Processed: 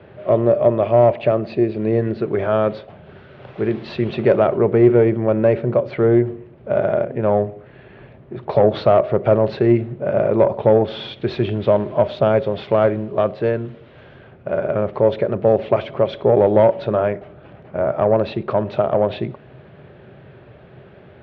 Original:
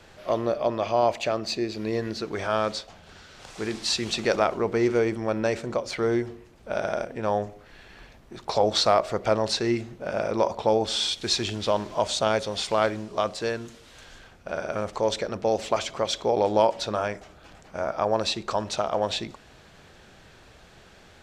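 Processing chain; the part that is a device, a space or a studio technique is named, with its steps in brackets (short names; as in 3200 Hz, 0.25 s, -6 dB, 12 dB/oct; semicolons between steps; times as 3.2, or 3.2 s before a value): guitar amplifier (tube stage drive 14 dB, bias 0.3; tone controls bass +10 dB, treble -14 dB; speaker cabinet 110–3500 Hz, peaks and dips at 130 Hz +8 dB, 390 Hz +10 dB, 590 Hz +9 dB); gain +3 dB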